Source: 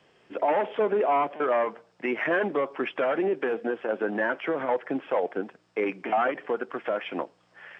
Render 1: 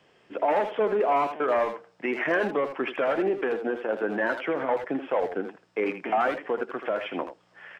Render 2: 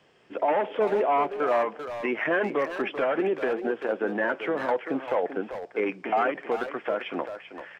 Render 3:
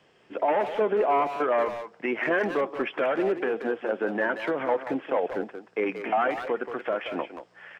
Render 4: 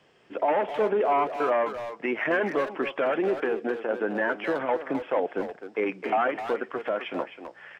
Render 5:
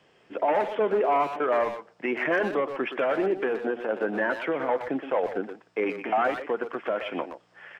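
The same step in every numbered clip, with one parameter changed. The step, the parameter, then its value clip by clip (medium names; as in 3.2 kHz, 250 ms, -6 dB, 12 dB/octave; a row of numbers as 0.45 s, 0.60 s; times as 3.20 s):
speakerphone echo, time: 80 ms, 390 ms, 180 ms, 260 ms, 120 ms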